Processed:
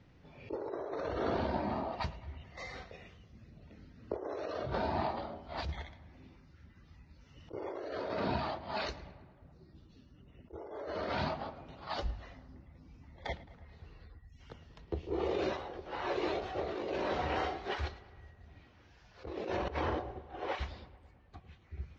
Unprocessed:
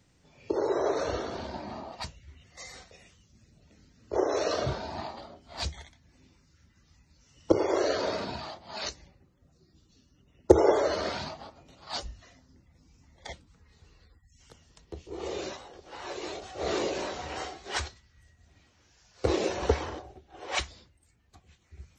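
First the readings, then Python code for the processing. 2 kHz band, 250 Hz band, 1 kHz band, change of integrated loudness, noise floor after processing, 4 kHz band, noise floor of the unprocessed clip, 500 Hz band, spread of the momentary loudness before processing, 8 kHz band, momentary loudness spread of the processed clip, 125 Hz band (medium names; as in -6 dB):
-3.5 dB, -6.0 dB, -2.5 dB, -7.5 dB, -61 dBFS, -8.0 dB, -65 dBFS, -8.0 dB, 19 LU, under -15 dB, 22 LU, -2.5 dB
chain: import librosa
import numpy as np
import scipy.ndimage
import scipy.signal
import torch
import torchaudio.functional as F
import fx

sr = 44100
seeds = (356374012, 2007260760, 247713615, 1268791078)

p1 = fx.over_compress(x, sr, threshold_db=-36.0, ratio=-1.0)
p2 = fx.air_absorb(p1, sr, metres=280.0)
y = p2 + fx.echo_filtered(p2, sr, ms=108, feedback_pct=68, hz=3500.0, wet_db=-18, dry=0)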